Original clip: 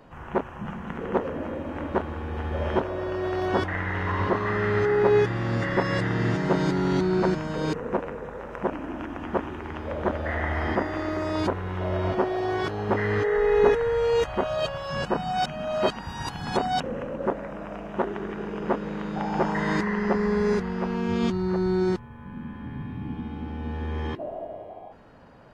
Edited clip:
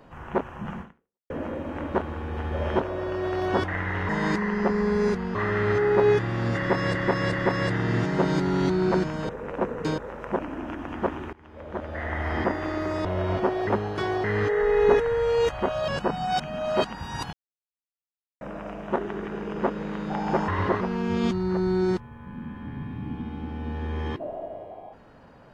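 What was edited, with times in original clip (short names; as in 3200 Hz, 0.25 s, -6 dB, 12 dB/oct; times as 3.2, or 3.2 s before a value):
0.81–1.3 fade out exponential
4.09–4.42 swap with 19.54–20.8
5.64–6.02 loop, 3 plays
7.6–8.29 reverse
9.64–10.72 fade in, from -22.5 dB
11.36–11.8 cut
12.42–12.99 reverse
14.63–14.94 cut
16.39–17.47 mute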